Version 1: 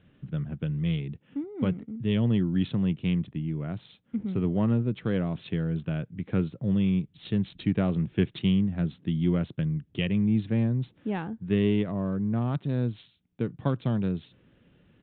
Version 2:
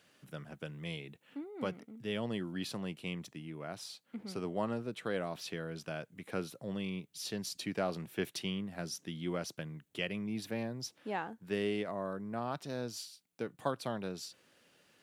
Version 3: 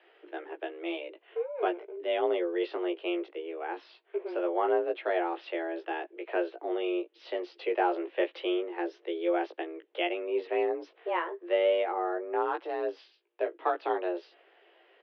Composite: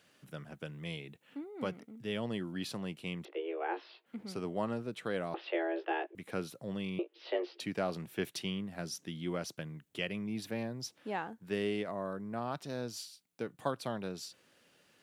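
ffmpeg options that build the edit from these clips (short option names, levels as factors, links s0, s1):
-filter_complex "[2:a]asplit=3[s0][s1][s2];[1:a]asplit=4[s3][s4][s5][s6];[s3]atrim=end=3.252[s7];[s0]atrim=start=3.248:end=4.062[s8];[s4]atrim=start=4.058:end=5.342[s9];[s1]atrim=start=5.338:end=6.152[s10];[s5]atrim=start=6.148:end=6.992[s11];[s2]atrim=start=6.988:end=7.602[s12];[s6]atrim=start=7.598[s13];[s7][s8]acrossfade=d=0.004:c1=hsin:c2=hsin[s14];[s14][s9]acrossfade=d=0.004:c1=hsin:c2=hsin[s15];[s15][s10]acrossfade=d=0.004:c1=hsin:c2=hsin[s16];[s16][s11]acrossfade=d=0.004:c1=hsin:c2=hsin[s17];[s17][s12]acrossfade=d=0.004:c1=hsin:c2=hsin[s18];[s18][s13]acrossfade=d=0.004:c1=hsin:c2=hsin"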